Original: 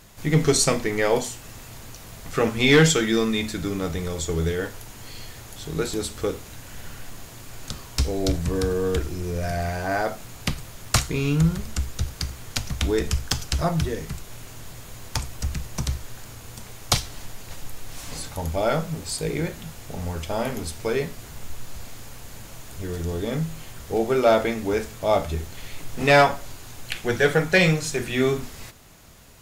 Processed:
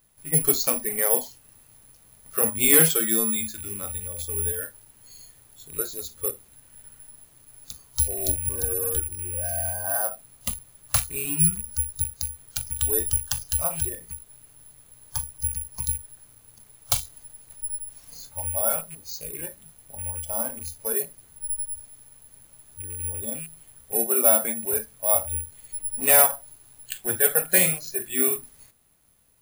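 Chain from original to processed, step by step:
loose part that buzzes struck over −28 dBFS, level −21 dBFS
noise reduction from a noise print of the clip's start 12 dB
bad sample-rate conversion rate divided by 4×, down filtered, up zero stuff
level −6.5 dB

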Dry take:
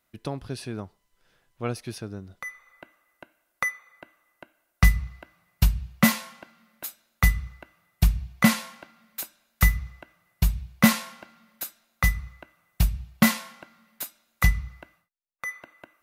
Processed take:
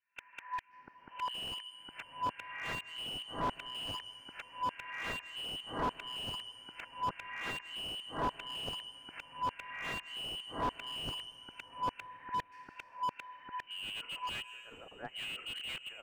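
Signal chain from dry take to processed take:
played backwards from end to start
multiband delay without the direct sound lows, highs 690 ms, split 1,900 Hz
treble cut that deepens with the level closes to 660 Hz, closed at −15 dBFS
voice inversion scrambler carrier 3,000 Hz
treble cut that deepens with the level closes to 650 Hz, closed at −15.5 dBFS
soft clipping −24 dBFS, distortion −13 dB
dense smooth reverb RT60 2.2 s, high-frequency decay 0.95×, pre-delay 115 ms, DRR 19 dB
noise gate with hold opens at −54 dBFS
slew-rate limiting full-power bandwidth 21 Hz
level +2.5 dB

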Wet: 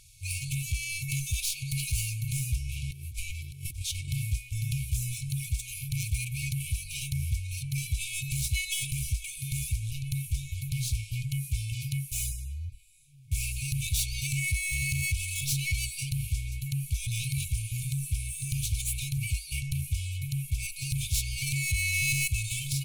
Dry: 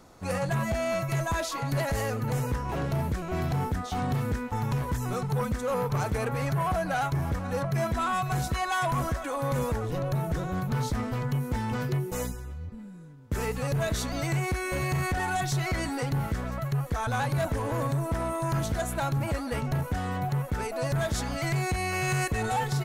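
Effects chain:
stylus tracing distortion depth 0.076 ms
brick-wall band-stop 150–2,200 Hz
0:02.90–0:04.08: compressor whose output falls as the input rises −39 dBFS, ratio −1
graphic EQ with 15 bands 160 Hz −7 dB, 1,600 Hz +9 dB, 10,000 Hz +11 dB
level +2.5 dB

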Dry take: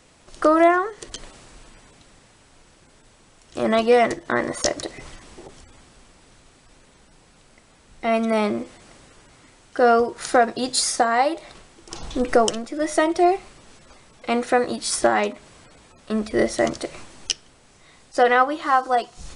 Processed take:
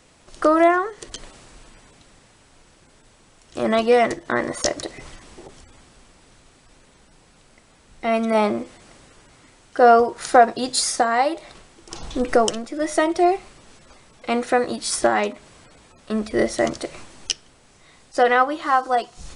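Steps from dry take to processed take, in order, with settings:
0:08.34–0:10.54: dynamic equaliser 810 Hz, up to +6 dB, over −31 dBFS, Q 1.3

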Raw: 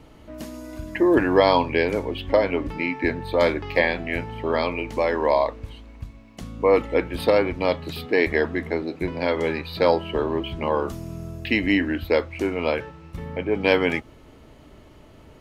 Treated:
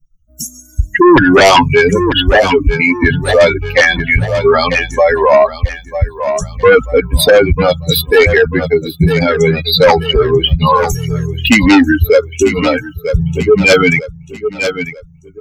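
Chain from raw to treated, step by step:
spectral dynamics exaggerated over time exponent 3
sine wavefolder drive 10 dB, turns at −10.5 dBFS
on a send: repeating echo 941 ms, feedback 36%, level −19 dB
on the sum: boost into a limiter +20.5 dB
level −1 dB

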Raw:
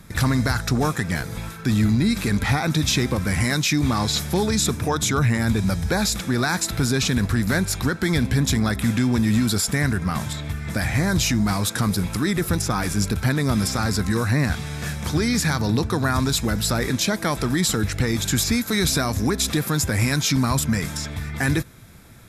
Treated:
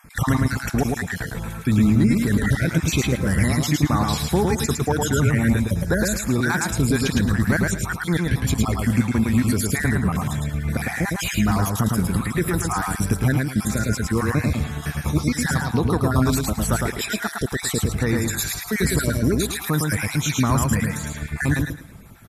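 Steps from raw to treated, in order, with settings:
time-frequency cells dropped at random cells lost 41%
parametric band 4,600 Hz −7 dB 1.2 octaves
repeating echo 109 ms, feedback 25%, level −3 dB
level +1.5 dB

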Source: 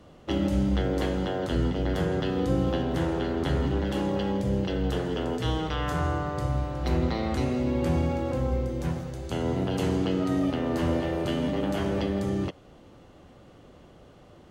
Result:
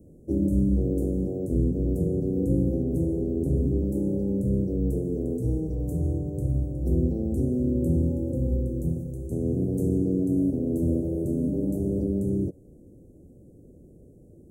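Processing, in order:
inverse Chebyshev band-stop filter 1,300–3,300 Hz, stop band 70 dB
level +2.5 dB

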